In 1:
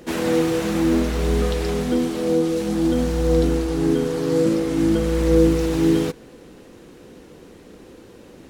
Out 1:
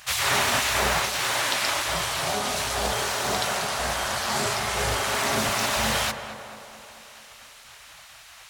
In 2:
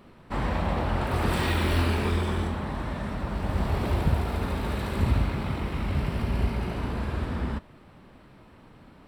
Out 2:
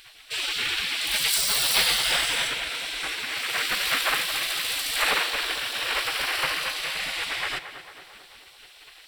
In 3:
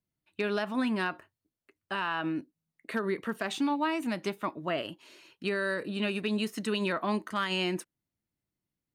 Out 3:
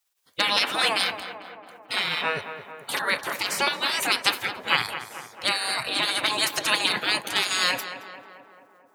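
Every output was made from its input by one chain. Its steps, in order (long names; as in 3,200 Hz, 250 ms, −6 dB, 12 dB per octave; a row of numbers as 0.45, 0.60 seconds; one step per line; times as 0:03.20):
high-pass filter 240 Hz 6 dB per octave
gate on every frequency bin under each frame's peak −20 dB weak
tape delay 221 ms, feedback 70%, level −8.5 dB, low-pass 1,800 Hz
loudness normalisation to −24 LKFS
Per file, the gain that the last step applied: +9.5, +19.5, +22.5 decibels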